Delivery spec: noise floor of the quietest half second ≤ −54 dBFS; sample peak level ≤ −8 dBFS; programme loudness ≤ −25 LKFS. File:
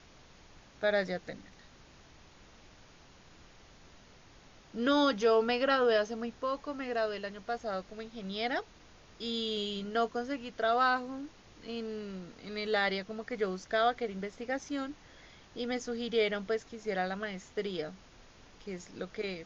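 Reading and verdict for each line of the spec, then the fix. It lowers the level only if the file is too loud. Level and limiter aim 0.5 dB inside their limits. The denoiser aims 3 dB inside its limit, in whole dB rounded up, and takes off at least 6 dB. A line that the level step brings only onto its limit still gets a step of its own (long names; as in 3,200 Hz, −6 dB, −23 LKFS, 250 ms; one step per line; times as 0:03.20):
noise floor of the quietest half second −57 dBFS: in spec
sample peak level −16.5 dBFS: in spec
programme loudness −33.0 LKFS: in spec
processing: no processing needed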